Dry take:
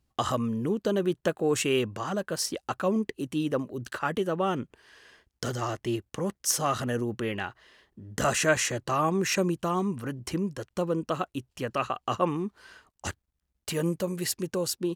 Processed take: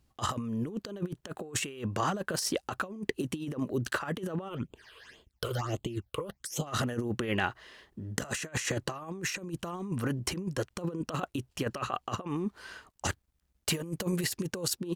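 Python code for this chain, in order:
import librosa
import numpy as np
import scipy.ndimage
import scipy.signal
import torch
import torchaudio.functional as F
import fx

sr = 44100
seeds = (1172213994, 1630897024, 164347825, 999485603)

y = fx.over_compress(x, sr, threshold_db=-32.0, ratio=-0.5)
y = fx.phaser_stages(y, sr, stages=8, low_hz=220.0, high_hz=1800.0, hz=fx.line((4.48, 2.6), (6.66, 0.97)), feedback_pct=25, at=(4.48, 6.66), fade=0.02)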